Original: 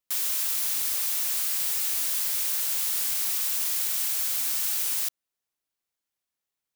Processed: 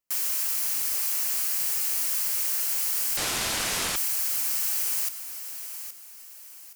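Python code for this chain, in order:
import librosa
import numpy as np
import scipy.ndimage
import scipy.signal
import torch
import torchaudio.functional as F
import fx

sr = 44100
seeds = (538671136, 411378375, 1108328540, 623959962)

p1 = fx.peak_eq(x, sr, hz=3600.0, db=-9.5, octaves=0.28)
p2 = p1 + fx.echo_feedback(p1, sr, ms=821, feedback_pct=37, wet_db=-10.5, dry=0)
y = fx.resample_linear(p2, sr, factor=2, at=(3.17, 3.96))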